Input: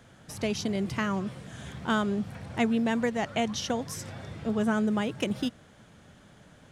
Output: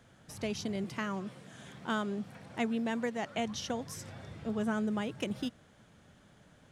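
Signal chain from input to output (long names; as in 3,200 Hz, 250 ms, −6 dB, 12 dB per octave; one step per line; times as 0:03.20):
0:00.84–0:03.38: high-pass filter 160 Hz 12 dB per octave
level −6 dB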